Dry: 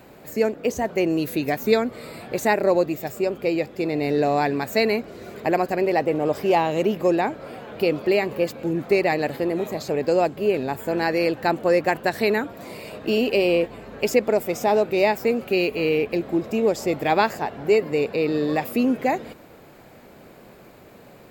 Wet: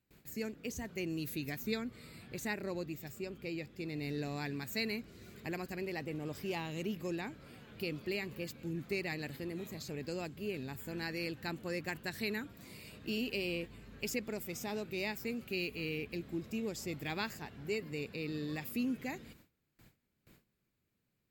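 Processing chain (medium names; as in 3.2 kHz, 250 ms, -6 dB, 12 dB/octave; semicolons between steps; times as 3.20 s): amplifier tone stack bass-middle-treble 6-0-2; gate with hold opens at -55 dBFS; 1.62–3.88 s: treble shelf 5.1 kHz -4.5 dB; trim +5.5 dB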